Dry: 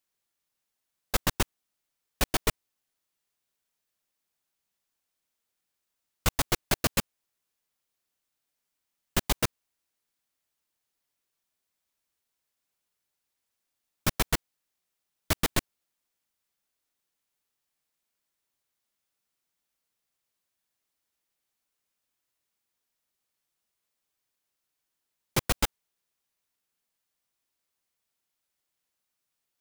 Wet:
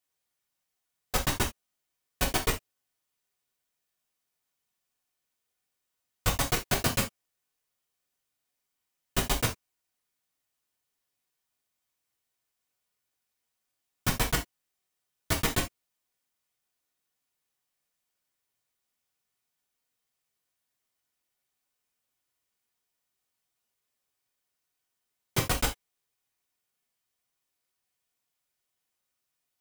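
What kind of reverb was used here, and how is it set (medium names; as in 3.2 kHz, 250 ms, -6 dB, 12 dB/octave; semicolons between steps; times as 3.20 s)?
gated-style reverb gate 100 ms falling, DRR -1.5 dB; trim -3.5 dB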